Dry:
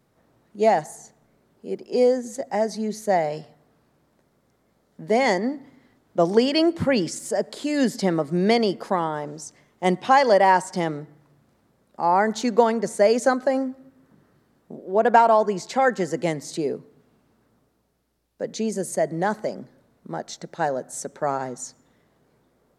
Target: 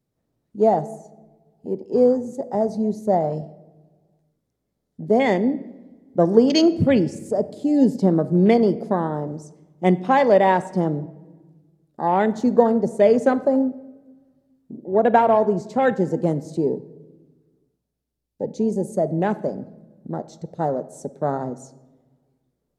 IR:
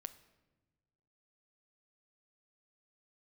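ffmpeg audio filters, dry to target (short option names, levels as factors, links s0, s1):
-filter_complex "[0:a]afwtdn=0.0355,equalizer=f=1300:t=o:w=2.2:g=-9.5,asplit=2[s0][s1];[1:a]atrim=start_sample=2205,lowshelf=f=130:g=4[s2];[s1][s2]afir=irnorm=-1:irlink=0,volume=5.31[s3];[s0][s3]amix=inputs=2:normalize=0,volume=0.473"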